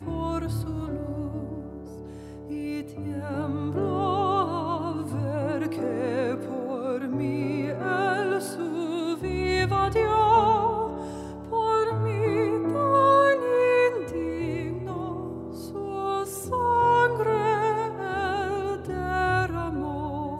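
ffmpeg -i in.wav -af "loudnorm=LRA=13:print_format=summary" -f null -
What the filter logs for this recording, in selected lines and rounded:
Input Integrated:    -26.1 LUFS
Input True Peak:      -9.3 dBTP
Input LRA:             5.5 LU
Input Threshold:     -36.3 LUFS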